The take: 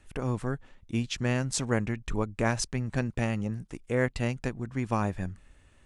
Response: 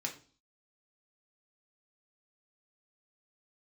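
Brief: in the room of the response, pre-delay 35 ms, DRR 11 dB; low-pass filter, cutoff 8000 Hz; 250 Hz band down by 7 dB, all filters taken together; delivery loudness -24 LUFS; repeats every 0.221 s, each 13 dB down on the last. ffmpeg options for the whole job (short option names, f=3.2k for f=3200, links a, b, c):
-filter_complex "[0:a]lowpass=8k,equalizer=f=250:t=o:g=-8.5,aecho=1:1:221|442|663:0.224|0.0493|0.0108,asplit=2[a][b];[1:a]atrim=start_sample=2205,adelay=35[c];[b][c]afir=irnorm=-1:irlink=0,volume=-12.5dB[d];[a][d]amix=inputs=2:normalize=0,volume=8.5dB"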